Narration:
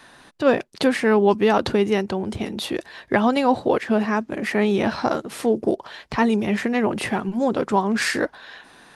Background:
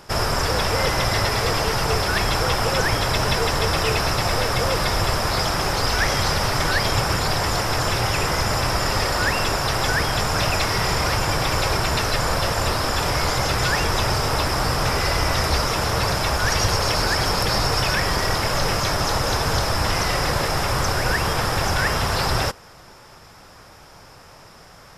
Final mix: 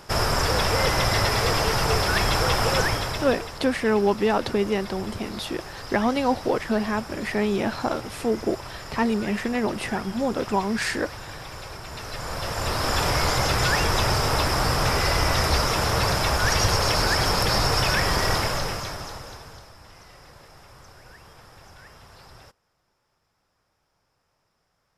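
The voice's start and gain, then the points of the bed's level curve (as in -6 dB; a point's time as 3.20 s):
2.80 s, -4.0 dB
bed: 2.79 s -1 dB
3.58 s -17 dB
11.82 s -17 dB
12.93 s -1 dB
18.37 s -1 dB
19.76 s -27 dB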